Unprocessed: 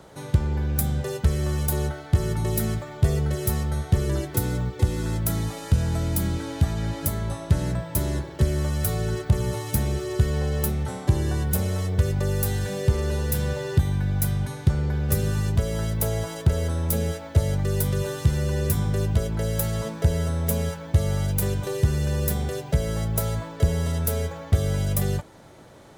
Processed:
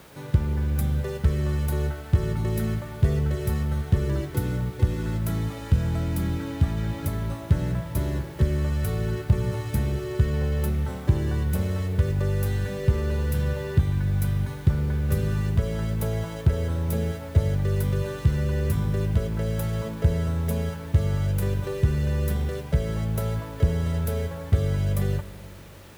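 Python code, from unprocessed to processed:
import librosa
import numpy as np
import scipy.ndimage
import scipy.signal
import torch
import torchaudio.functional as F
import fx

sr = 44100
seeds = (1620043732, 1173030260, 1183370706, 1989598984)

p1 = fx.peak_eq(x, sr, hz=740.0, db=-5.5, octaves=0.37)
p2 = fx.quant_dither(p1, sr, seeds[0], bits=6, dither='triangular')
p3 = p1 + (p2 * librosa.db_to_amplitude(-6.0))
p4 = fx.bass_treble(p3, sr, bass_db=1, treble_db=-10)
p5 = fx.rev_schroeder(p4, sr, rt60_s=3.1, comb_ms=32, drr_db=13.5)
y = p5 * librosa.db_to_amplitude(-5.0)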